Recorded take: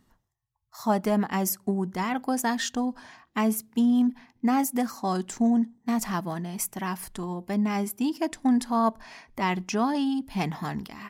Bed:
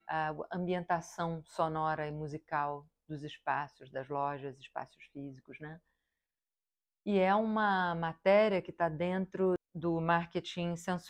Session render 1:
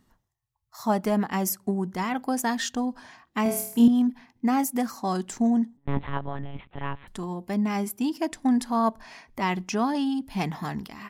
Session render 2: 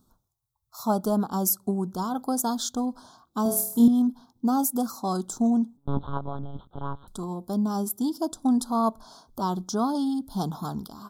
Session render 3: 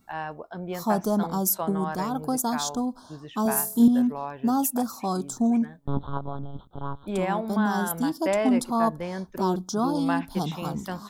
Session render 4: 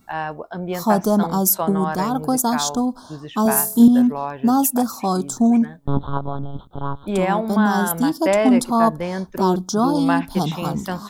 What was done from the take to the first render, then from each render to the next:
3.43–3.88 s: flutter echo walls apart 4.4 m, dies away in 0.56 s; 5.77–7.08 s: monotone LPC vocoder at 8 kHz 140 Hz
elliptic band-stop 1.4–3.5 kHz, stop band 40 dB; treble shelf 8.2 kHz +7.5 dB
add bed +1 dB
trim +7 dB; peak limiter -3 dBFS, peak gain reduction 1 dB

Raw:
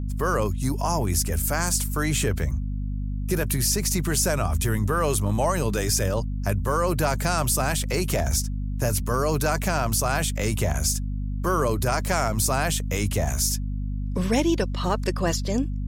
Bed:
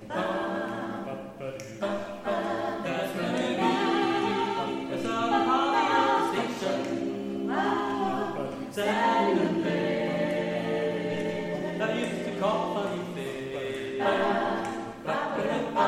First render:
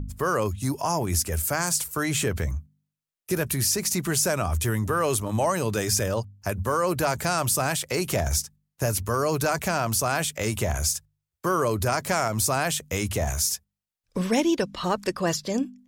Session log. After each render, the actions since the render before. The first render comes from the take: de-hum 50 Hz, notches 5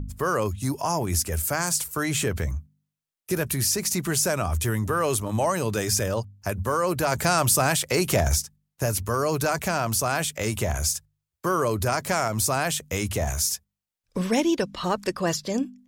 7.12–8.35 s: gain +3.5 dB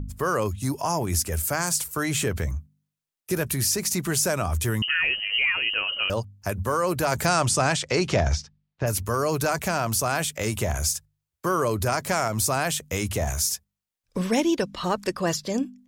4.82–6.10 s: frequency inversion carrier 3 kHz; 7.26–8.86 s: low-pass 9.7 kHz -> 3.9 kHz 24 dB/octave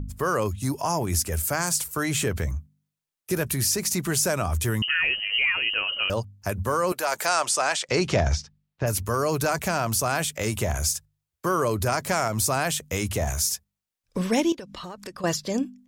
6.92–7.89 s: high-pass 560 Hz; 14.52–15.24 s: compression 8:1, threshold -34 dBFS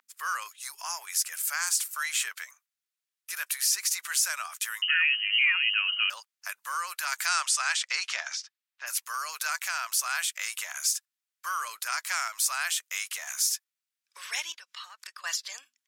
high-pass 1.3 kHz 24 dB/octave; treble shelf 11 kHz -4 dB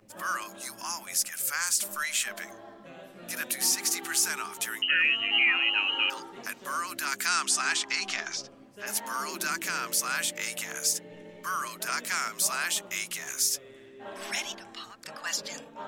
add bed -17 dB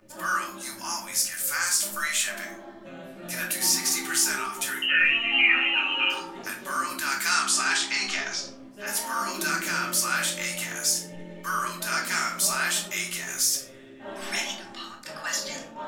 simulated room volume 490 m³, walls furnished, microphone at 2.6 m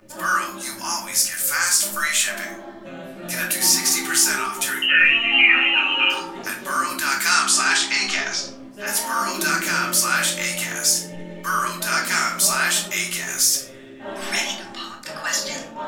trim +6 dB; peak limiter -3 dBFS, peak gain reduction 1.5 dB

